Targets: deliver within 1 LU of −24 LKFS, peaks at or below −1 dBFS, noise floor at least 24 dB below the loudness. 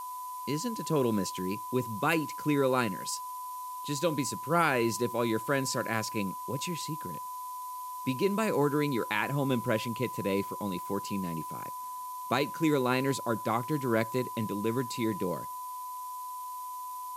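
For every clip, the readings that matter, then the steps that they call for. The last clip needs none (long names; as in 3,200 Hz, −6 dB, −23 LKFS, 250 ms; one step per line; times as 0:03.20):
interfering tone 1,000 Hz; level of the tone −37 dBFS; background noise floor −40 dBFS; target noise floor −56 dBFS; integrated loudness −31.5 LKFS; sample peak −13.0 dBFS; target loudness −24.0 LKFS
→ notch filter 1,000 Hz, Q 30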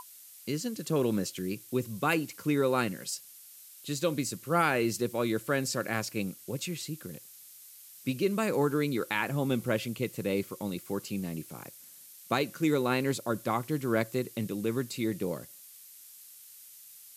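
interfering tone none found; background noise floor −52 dBFS; target noise floor −56 dBFS
→ noise reduction from a noise print 6 dB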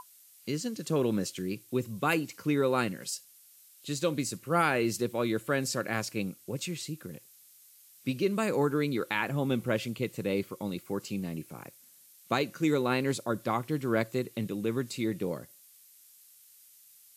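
background noise floor −58 dBFS; integrated loudness −31.5 LKFS; sample peak −13.0 dBFS; target loudness −24.0 LKFS
→ level +7.5 dB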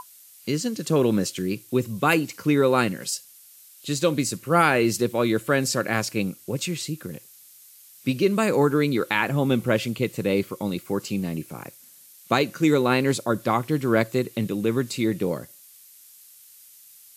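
integrated loudness −24.0 LKFS; sample peak −5.5 dBFS; background noise floor −50 dBFS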